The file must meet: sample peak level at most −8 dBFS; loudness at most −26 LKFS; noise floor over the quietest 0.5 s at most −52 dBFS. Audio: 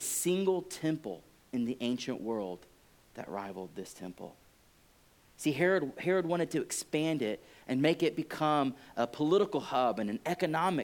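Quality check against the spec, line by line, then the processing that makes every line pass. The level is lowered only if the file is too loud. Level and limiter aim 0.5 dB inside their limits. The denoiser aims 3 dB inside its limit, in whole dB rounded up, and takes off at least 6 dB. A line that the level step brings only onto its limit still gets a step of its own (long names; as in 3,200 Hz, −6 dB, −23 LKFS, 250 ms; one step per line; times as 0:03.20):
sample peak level −14.5 dBFS: in spec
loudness −32.5 LKFS: in spec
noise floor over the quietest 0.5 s −64 dBFS: in spec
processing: no processing needed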